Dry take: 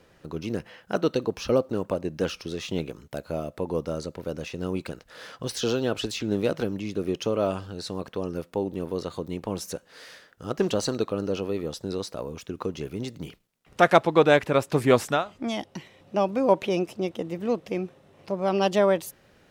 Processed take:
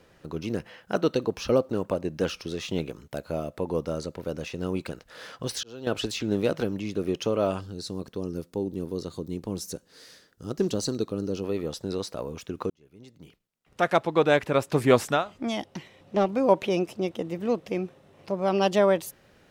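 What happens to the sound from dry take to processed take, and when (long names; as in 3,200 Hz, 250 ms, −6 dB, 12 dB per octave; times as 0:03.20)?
0:05.44–0:05.87: volume swells 698 ms
0:07.61–0:11.44: flat-topped bell 1,300 Hz −8.5 dB 2.9 octaves
0:12.70–0:14.88: fade in
0:15.65–0:16.36: highs frequency-modulated by the lows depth 0.23 ms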